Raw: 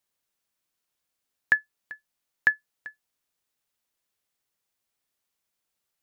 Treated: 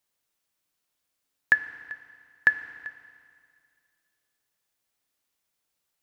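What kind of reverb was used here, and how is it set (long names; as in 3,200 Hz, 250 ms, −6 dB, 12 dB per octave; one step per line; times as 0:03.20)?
feedback delay network reverb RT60 2.2 s, low-frequency decay 1.05×, high-frequency decay 1×, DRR 10.5 dB
level +1.5 dB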